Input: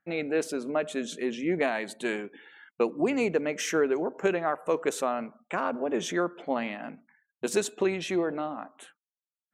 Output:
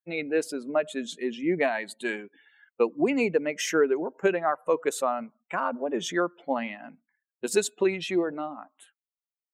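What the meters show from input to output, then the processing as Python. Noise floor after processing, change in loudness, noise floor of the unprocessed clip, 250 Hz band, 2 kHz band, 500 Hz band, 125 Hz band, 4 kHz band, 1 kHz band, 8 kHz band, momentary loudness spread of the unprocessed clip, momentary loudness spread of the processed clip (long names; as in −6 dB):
below −85 dBFS, +1.5 dB, below −85 dBFS, +0.5 dB, +2.0 dB, +1.5 dB, −1.0 dB, +2.0 dB, +2.0 dB, +1.5 dB, 9 LU, 10 LU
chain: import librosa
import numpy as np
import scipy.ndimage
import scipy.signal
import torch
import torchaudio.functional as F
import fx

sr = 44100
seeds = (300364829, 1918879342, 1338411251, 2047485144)

y = fx.bin_expand(x, sr, power=1.5)
y = fx.low_shelf(y, sr, hz=110.0, db=-11.0)
y = fx.notch(y, sr, hz=5900.0, q=17.0)
y = y * librosa.db_to_amplitude(5.0)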